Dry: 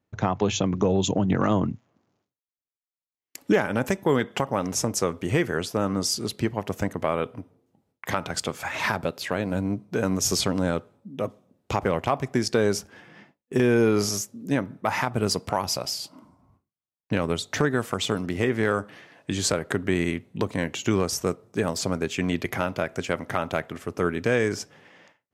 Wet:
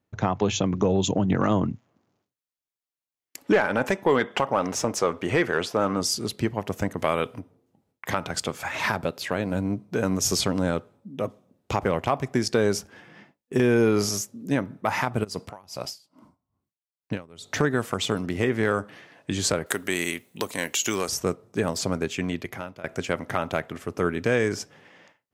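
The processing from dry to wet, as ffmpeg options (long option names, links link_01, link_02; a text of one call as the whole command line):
ffmpeg -i in.wav -filter_complex "[0:a]asettb=1/sr,asplit=3[link_01][link_02][link_03];[link_01]atrim=end=3.444[link_04];[link_02]atrim=start=3.44:end=6.01,asetpts=PTS-STARTPTS,afade=type=in:duration=0.004:curve=qsin,afade=type=out:start_time=2.566:duration=0.004:curve=qsin,asplit=2[link_05][link_06];[link_06]highpass=frequency=720:poles=1,volume=13dB,asoftclip=type=tanh:threshold=-9dB[link_07];[link_05][link_07]amix=inputs=2:normalize=0,lowpass=frequency=2200:poles=1,volume=-6dB[link_08];[link_03]atrim=start=6.006[link_09];[link_04][link_08]acrossfade=duration=0.004:curve1=hsin:curve2=qsin[link_10];[link_10][link_09]acrossfade=duration=0.004:curve1=qsin:curve2=hsin,asplit=3[link_11][link_12][link_13];[link_11]afade=type=out:start_time=6.97:duration=0.02[link_14];[link_12]highshelf=frequency=2200:gain=9.5,afade=type=in:start_time=6.97:duration=0.02,afade=type=out:start_time=7.38:duration=0.02[link_15];[link_13]afade=type=in:start_time=7.38:duration=0.02[link_16];[link_14][link_15][link_16]amix=inputs=3:normalize=0,asplit=3[link_17][link_18][link_19];[link_17]afade=type=out:start_time=15.23:duration=0.02[link_20];[link_18]aeval=exprs='val(0)*pow(10,-25*(0.5-0.5*cos(2*PI*2.4*n/s))/20)':channel_layout=same,afade=type=in:start_time=15.23:duration=0.02,afade=type=out:start_time=17.5:duration=0.02[link_21];[link_19]afade=type=in:start_time=17.5:duration=0.02[link_22];[link_20][link_21][link_22]amix=inputs=3:normalize=0,asettb=1/sr,asplit=3[link_23][link_24][link_25];[link_23]atrim=end=19.664[link_26];[link_24]atrim=start=19.66:end=21.09,asetpts=PTS-STARTPTS,afade=type=in:duration=0.004:curve=qsin,afade=type=out:start_time=1.426:duration=0.004:curve=qsin,aemphasis=mode=production:type=riaa[link_27];[link_25]atrim=start=21.086[link_28];[link_26][link_27]acrossfade=duration=0.004:curve1=hsin:curve2=qsin[link_29];[link_29][link_28]acrossfade=duration=0.004:curve1=qsin:curve2=hsin,asplit=2[link_30][link_31];[link_30]atrim=end=22.84,asetpts=PTS-STARTPTS,afade=type=out:start_time=22.02:duration=0.82:silence=0.125893[link_32];[link_31]atrim=start=22.84,asetpts=PTS-STARTPTS,afade=type=in:duration=0.004:curve=hsin:silence=0.125893[link_33];[link_32][link_33]concat=n=2:v=0:a=1" out.wav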